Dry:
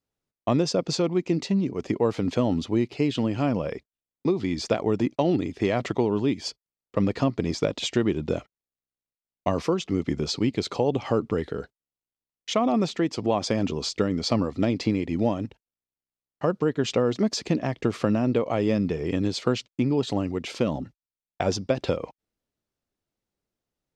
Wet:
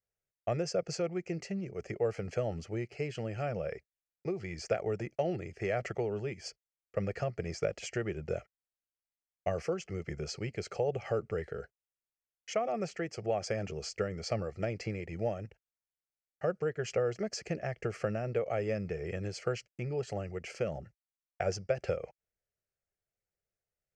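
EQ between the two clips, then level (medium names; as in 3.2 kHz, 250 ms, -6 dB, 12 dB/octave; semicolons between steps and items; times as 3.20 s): distance through air 88 m; treble shelf 3.7 kHz +10 dB; static phaser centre 1 kHz, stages 6; -5.5 dB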